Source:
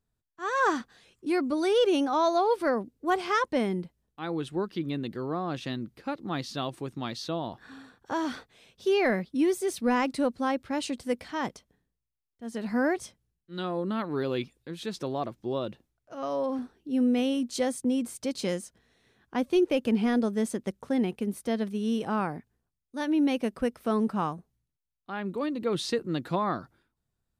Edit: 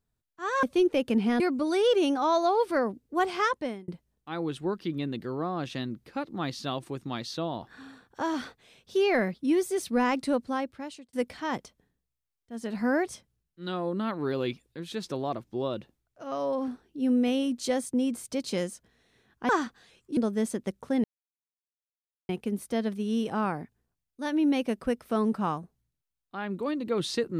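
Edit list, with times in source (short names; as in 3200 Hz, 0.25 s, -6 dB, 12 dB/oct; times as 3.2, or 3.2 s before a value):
0.63–1.31 swap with 19.4–20.17
3.36–3.79 fade out
10.3–11.04 fade out
21.04 insert silence 1.25 s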